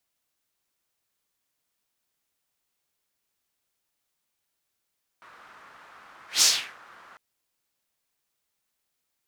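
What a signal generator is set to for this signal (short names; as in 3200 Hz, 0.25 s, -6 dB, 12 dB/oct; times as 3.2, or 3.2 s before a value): whoosh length 1.95 s, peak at 1.2, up 0.15 s, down 0.38 s, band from 1300 Hz, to 5900 Hz, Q 2.4, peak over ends 33 dB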